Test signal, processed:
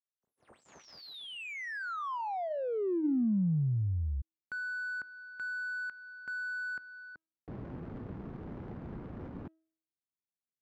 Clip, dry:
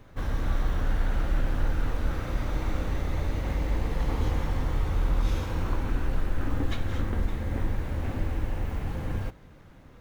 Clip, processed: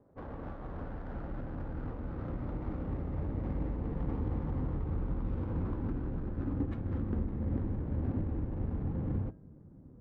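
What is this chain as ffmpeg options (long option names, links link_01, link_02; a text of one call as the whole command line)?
ffmpeg -i in.wav -af "bandreject=frequency=321.5:width_type=h:width=4,bandreject=frequency=643:width_type=h:width=4,bandreject=frequency=964.5:width_type=h:width=4,bandreject=frequency=1286:width_type=h:width=4,bandreject=frequency=1607.5:width_type=h:width=4,bandreject=frequency=1929:width_type=h:width=4,bandreject=frequency=2250.5:width_type=h:width=4,bandreject=frequency=2572:width_type=h:width=4,bandreject=frequency=2893.5:width_type=h:width=4,bandreject=frequency=3215:width_type=h:width=4,bandreject=frequency=3536.5:width_type=h:width=4,bandreject=frequency=3858:width_type=h:width=4,bandreject=frequency=4179.5:width_type=h:width=4,bandreject=frequency=4501:width_type=h:width=4,bandreject=frequency=4822.5:width_type=h:width=4,bandreject=frequency=5144:width_type=h:width=4,bandreject=frequency=5465.5:width_type=h:width=4,bandreject=frequency=5787:width_type=h:width=4,bandreject=frequency=6108.5:width_type=h:width=4,bandreject=frequency=6430:width_type=h:width=4,bandreject=frequency=6751.5:width_type=h:width=4,bandreject=frequency=7073:width_type=h:width=4,bandreject=frequency=7394.5:width_type=h:width=4,bandreject=frequency=7716:width_type=h:width=4,bandreject=frequency=8037.5:width_type=h:width=4,bandreject=frequency=8359:width_type=h:width=4,bandreject=frequency=8680.5:width_type=h:width=4,bandreject=frequency=9002:width_type=h:width=4,bandreject=frequency=9323.5:width_type=h:width=4,bandreject=frequency=9645:width_type=h:width=4,bandreject=frequency=9966.5:width_type=h:width=4,bandreject=frequency=10288:width_type=h:width=4,bandreject=frequency=10609.5:width_type=h:width=4,bandreject=frequency=10931:width_type=h:width=4,bandreject=frequency=11252.5:width_type=h:width=4,bandreject=frequency=11574:width_type=h:width=4,bandreject=frequency=11895.5:width_type=h:width=4,adynamicsmooth=sensitivity=5.5:basefreq=560,lowshelf=frequency=320:gain=-9,alimiter=level_in=2.5dB:limit=-24dB:level=0:latency=1:release=189,volume=-2.5dB,asubboost=boost=6:cutoff=240,bandpass=frequency=380:width_type=q:width=0.58:csg=0" out.wav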